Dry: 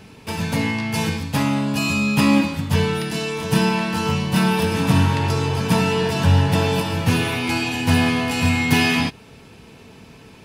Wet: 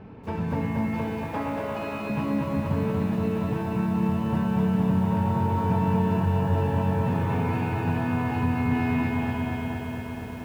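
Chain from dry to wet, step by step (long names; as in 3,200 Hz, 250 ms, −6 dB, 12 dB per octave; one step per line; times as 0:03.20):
0:00.86–0:02.10: high-pass filter 310 Hz 24 dB per octave
spring reverb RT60 2.9 s, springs 59 ms, chirp 50 ms, DRR 4.5 dB
downward compressor 4 to 1, threshold −25 dBFS, peak gain reduction 12.5 dB
low-pass filter 1,200 Hz 12 dB per octave
feedback echo at a low word length 235 ms, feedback 80%, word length 9 bits, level −4 dB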